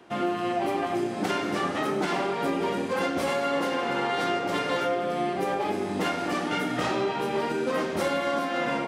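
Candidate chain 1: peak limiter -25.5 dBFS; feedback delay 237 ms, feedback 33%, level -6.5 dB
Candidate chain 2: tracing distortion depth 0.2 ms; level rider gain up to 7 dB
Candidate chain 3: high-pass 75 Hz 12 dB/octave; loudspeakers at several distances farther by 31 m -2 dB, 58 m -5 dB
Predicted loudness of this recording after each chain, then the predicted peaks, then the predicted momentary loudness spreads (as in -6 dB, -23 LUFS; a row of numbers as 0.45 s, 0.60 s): -32.5 LUFS, -20.5 LUFS, -25.0 LUFS; -22.0 dBFS, -8.5 dBFS, -12.0 dBFS; 1 LU, 2 LU, 2 LU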